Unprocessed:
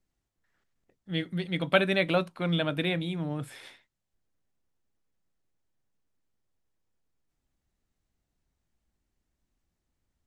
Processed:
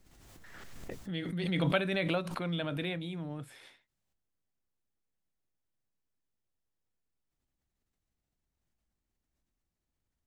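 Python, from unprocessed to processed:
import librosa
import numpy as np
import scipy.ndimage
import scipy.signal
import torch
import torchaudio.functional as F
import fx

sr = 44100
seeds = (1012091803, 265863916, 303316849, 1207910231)

y = fx.pre_swell(x, sr, db_per_s=24.0)
y = y * librosa.db_to_amplitude(-7.5)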